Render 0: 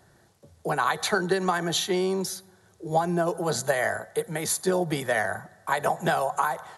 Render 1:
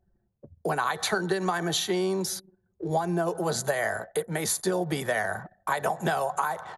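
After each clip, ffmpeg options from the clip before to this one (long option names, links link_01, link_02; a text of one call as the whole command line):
ffmpeg -i in.wav -af "anlmdn=0.0398,acompressor=threshold=-38dB:ratio=2,volume=7dB" out.wav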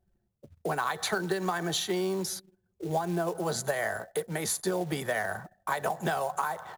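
ffmpeg -i in.wav -af "acrusher=bits=5:mode=log:mix=0:aa=0.000001,volume=-3dB" out.wav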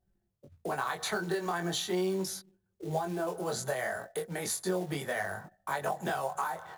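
ffmpeg -i in.wav -af "flanger=delay=20:depth=3.7:speed=0.37" out.wav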